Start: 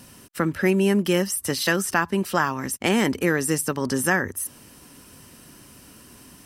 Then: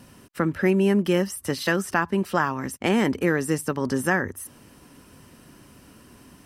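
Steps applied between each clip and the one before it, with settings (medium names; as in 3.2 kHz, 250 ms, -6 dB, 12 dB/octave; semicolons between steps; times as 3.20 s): treble shelf 3.3 kHz -9 dB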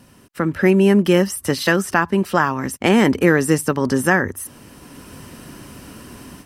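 level rider gain up to 11.5 dB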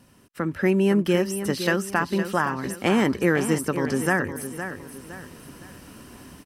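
feedback delay 512 ms, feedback 37%, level -10 dB; trim -6.5 dB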